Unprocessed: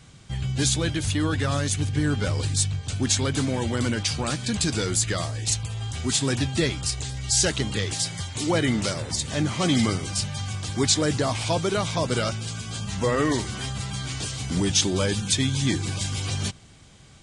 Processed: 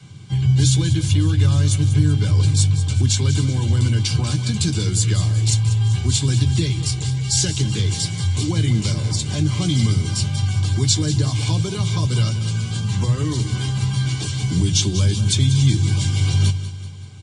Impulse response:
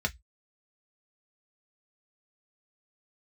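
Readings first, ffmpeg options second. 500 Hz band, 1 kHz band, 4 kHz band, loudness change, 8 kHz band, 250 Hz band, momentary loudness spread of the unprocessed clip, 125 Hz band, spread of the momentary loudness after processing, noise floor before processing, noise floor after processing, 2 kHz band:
-5.0 dB, -4.5 dB, +2.5 dB, +6.0 dB, +1.5 dB, +2.5 dB, 9 LU, +11.0 dB, 5 LU, -49 dBFS, -29 dBFS, -2.5 dB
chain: -filter_complex "[0:a]acrossover=split=170|3000[a][b][c];[b]acompressor=threshold=-32dB:ratio=6[d];[a][d][c]amix=inputs=3:normalize=0,aecho=1:1:190|380|570|760|950:0.224|0.116|0.0605|0.0315|0.0164[e];[1:a]atrim=start_sample=2205,asetrate=70560,aresample=44100[f];[e][f]afir=irnorm=-1:irlink=0"

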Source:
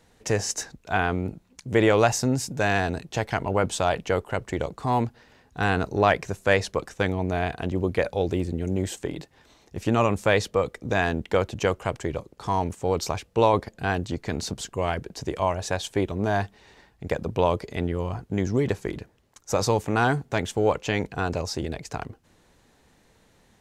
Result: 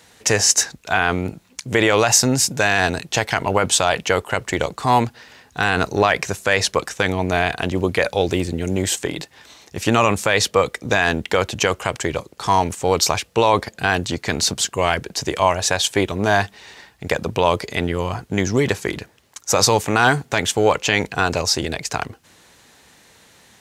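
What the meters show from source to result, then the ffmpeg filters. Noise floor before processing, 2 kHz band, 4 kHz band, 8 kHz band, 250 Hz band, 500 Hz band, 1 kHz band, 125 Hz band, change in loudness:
-61 dBFS, +9.0 dB, +13.0 dB, +14.5 dB, +4.0 dB, +4.5 dB, +7.0 dB, +3.0 dB, +6.5 dB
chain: -af "highpass=63,tiltshelf=f=970:g=-5.5,alimiter=level_in=11.5dB:limit=-1dB:release=50:level=0:latency=1,volume=-2dB"

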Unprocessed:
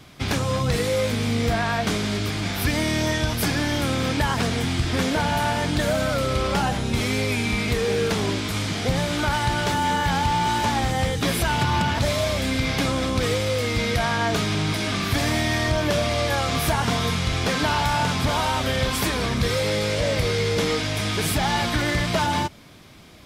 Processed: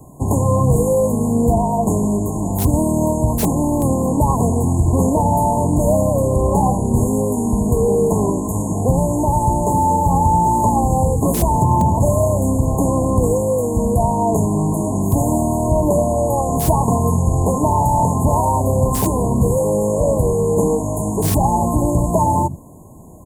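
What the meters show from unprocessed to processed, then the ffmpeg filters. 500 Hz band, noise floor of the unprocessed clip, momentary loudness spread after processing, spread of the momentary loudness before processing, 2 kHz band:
+7.5 dB, -28 dBFS, 3 LU, 2 LU, under -20 dB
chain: -filter_complex "[0:a]afftfilt=real='re*(1-between(b*sr/4096,1100,6500))':imag='im*(1-between(b*sr/4096,1100,6500))':win_size=4096:overlap=0.75,acrossover=split=240|690|4700[a][b][c][d];[a]aecho=1:1:82:0.562[e];[d]aeval=exprs='(mod(18.8*val(0)+1,2)-1)/18.8':c=same[f];[e][b][c][f]amix=inputs=4:normalize=0,volume=7.5dB"

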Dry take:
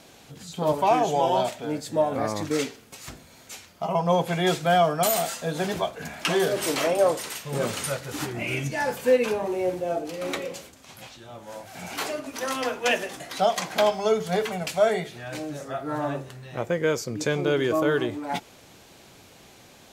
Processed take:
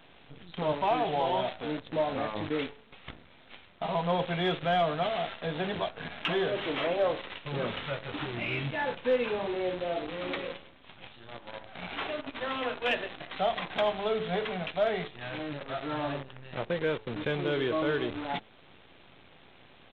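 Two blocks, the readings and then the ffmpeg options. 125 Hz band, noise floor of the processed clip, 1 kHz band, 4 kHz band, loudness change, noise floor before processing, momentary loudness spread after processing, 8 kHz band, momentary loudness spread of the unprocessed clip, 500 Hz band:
-5.5 dB, -56 dBFS, -6.0 dB, -4.0 dB, -6.0 dB, -51 dBFS, 11 LU, under -35 dB, 17 LU, -6.5 dB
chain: -filter_complex "[0:a]highshelf=f=2.6k:g=3,bandreject=f=108.4:t=h:w=4,bandreject=f=216.8:t=h:w=4,bandreject=f=325.2:t=h:w=4,bandreject=f=433.6:t=h:w=4,bandreject=f=542:t=h:w=4,bandreject=f=650.4:t=h:w=4,bandreject=f=758.8:t=h:w=4,asplit=2[a][b];[b]acompressor=threshold=-39dB:ratio=4,volume=-1dB[c];[a][c]amix=inputs=2:normalize=0,asoftclip=type=tanh:threshold=-11.5dB,aresample=8000,acrusher=bits=6:dc=4:mix=0:aa=0.000001,aresample=44100,aeval=exprs='0.282*(cos(1*acos(clip(val(0)/0.282,-1,1)))-cos(1*PI/2))+0.01*(cos(2*acos(clip(val(0)/0.282,-1,1)))-cos(2*PI/2))+0.0178*(cos(3*acos(clip(val(0)/0.282,-1,1)))-cos(3*PI/2))+0.00447*(cos(5*acos(clip(val(0)/0.282,-1,1)))-cos(5*PI/2))':c=same,volume=-5.5dB"

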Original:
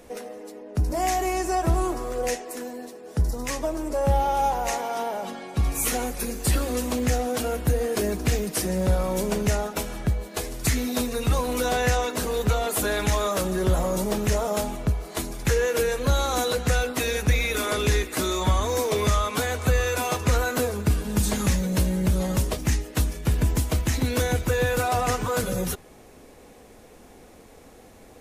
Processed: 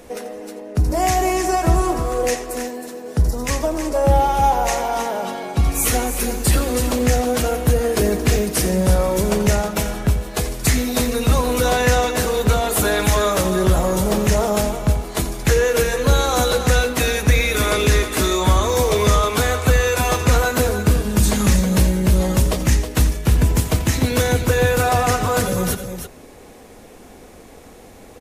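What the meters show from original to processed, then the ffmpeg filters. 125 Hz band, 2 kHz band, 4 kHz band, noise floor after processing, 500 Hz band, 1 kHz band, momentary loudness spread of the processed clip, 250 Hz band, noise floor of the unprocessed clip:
+7.0 dB, +6.5 dB, +6.5 dB, -42 dBFS, +6.5 dB, +6.5 dB, 6 LU, +6.5 dB, -49 dBFS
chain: -af "aecho=1:1:87|317:0.2|0.355,volume=6dB"

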